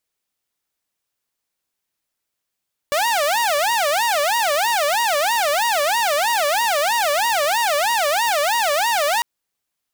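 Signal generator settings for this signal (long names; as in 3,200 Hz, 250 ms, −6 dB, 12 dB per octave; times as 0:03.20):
siren wail 573–950 Hz 3.1 per second saw −14 dBFS 6.30 s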